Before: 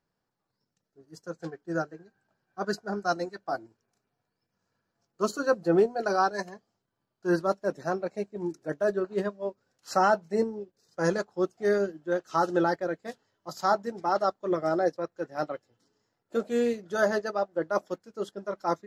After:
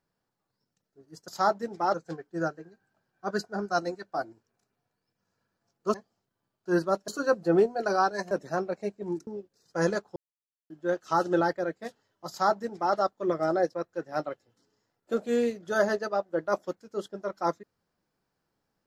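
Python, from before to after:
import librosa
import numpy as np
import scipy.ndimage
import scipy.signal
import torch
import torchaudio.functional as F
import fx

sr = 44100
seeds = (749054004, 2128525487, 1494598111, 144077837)

y = fx.edit(x, sr, fx.move(start_s=6.51, length_s=1.14, to_s=5.28),
    fx.cut(start_s=8.61, length_s=1.89),
    fx.silence(start_s=11.39, length_s=0.54),
    fx.duplicate(start_s=13.52, length_s=0.66, to_s=1.28), tone=tone)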